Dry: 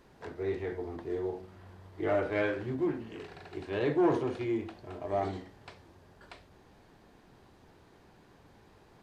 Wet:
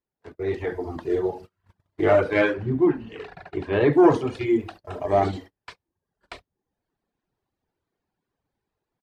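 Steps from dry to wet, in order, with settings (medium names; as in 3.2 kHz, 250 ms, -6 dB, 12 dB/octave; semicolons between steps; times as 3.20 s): delay 71 ms -12 dB; reverb removal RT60 1.3 s; level rider gain up to 11.5 dB; gate -40 dBFS, range -32 dB; 2.53–3.93 s: tone controls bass +1 dB, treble -13 dB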